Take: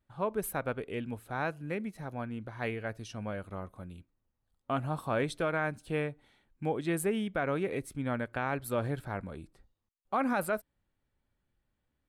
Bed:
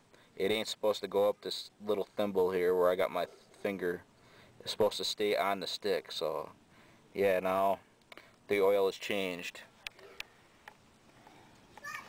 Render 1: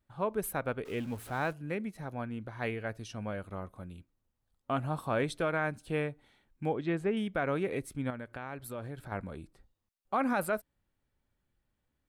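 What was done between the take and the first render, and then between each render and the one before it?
0:00.85–0:01.53: converter with a step at zero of −45.5 dBFS
0:06.73–0:07.17: high-frequency loss of the air 170 metres
0:08.10–0:09.12: downward compressor 2 to 1, threshold −43 dBFS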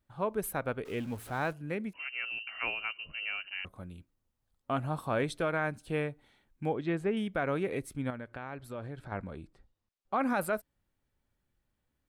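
0:01.93–0:03.65: voice inversion scrambler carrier 2,900 Hz
0:08.18–0:10.21: high-frequency loss of the air 60 metres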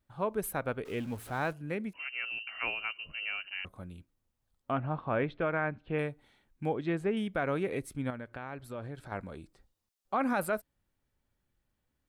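0:04.71–0:05.99: low-pass filter 2,800 Hz 24 dB per octave
0:08.95–0:10.14: bass and treble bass −3 dB, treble +7 dB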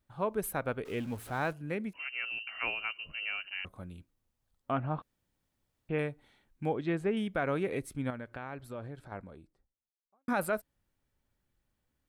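0:05.02–0:05.89: fill with room tone
0:08.38–0:10.28: fade out and dull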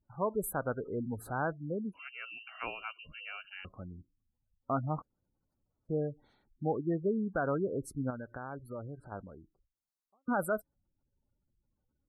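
flat-topped bell 2,500 Hz −8.5 dB 1.1 octaves
gate on every frequency bin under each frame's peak −20 dB strong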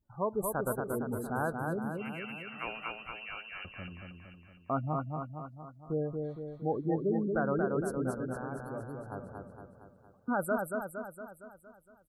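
repeating echo 231 ms, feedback 56%, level −4 dB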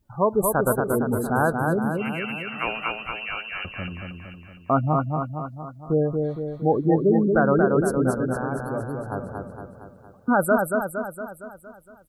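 level +11.5 dB

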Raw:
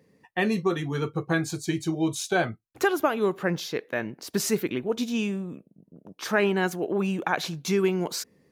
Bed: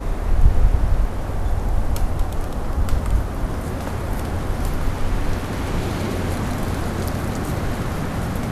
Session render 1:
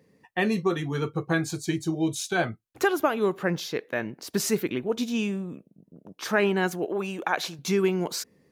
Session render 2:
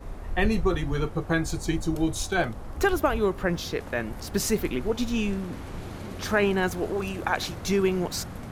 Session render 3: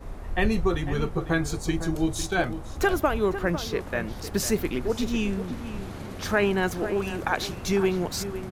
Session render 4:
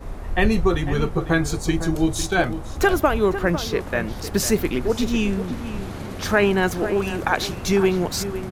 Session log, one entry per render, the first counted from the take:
0:01.75–0:02.37: parametric band 3,200 Hz → 530 Hz −10.5 dB; 0:06.85–0:07.59: bass and treble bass −11 dB, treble +1 dB
mix in bed −14 dB
slap from a distant wall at 86 metres, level −11 dB
level +5 dB

